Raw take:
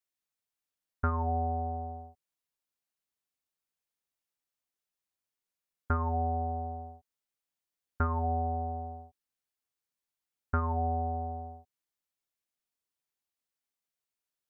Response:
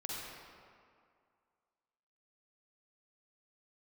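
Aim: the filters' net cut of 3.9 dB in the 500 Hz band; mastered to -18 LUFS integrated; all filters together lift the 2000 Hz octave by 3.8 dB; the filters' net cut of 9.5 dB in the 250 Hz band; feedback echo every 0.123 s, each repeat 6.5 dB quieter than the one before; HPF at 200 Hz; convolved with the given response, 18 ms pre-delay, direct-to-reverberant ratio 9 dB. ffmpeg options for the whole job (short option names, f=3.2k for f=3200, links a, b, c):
-filter_complex "[0:a]highpass=200,equalizer=f=250:t=o:g=-7.5,equalizer=f=500:t=o:g=-3.5,equalizer=f=2k:t=o:g=7,aecho=1:1:123|246|369|492|615|738:0.473|0.222|0.105|0.0491|0.0231|0.0109,asplit=2[a][b];[1:a]atrim=start_sample=2205,adelay=18[c];[b][c]afir=irnorm=-1:irlink=0,volume=-10.5dB[d];[a][d]amix=inputs=2:normalize=0,volume=17.5dB"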